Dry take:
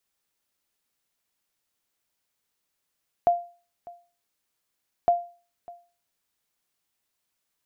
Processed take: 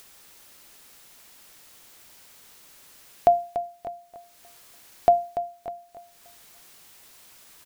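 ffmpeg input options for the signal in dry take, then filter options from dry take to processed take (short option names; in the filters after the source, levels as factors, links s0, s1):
-f lavfi -i "aevalsrc='0.237*(sin(2*PI*696*mod(t,1.81))*exp(-6.91*mod(t,1.81)/0.37)+0.075*sin(2*PI*696*max(mod(t,1.81)-0.6,0))*exp(-6.91*max(mod(t,1.81)-0.6,0)/0.37))':d=3.62:s=44100"
-filter_complex "[0:a]bandreject=f=60:t=h:w=6,bandreject=f=120:t=h:w=6,bandreject=f=180:t=h:w=6,bandreject=f=240:t=h:w=6,bandreject=f=300:t=h:w=6,asplit=2[s0][s1];[s1]acompressor=mode=upward:threshold=0.0501:ratio=2.5,volume=0.75[s2];[s0][s2]amix=inputs=2:normalize=0,aecho=1:1:289|578|867:0.266|0.0825|0.0256"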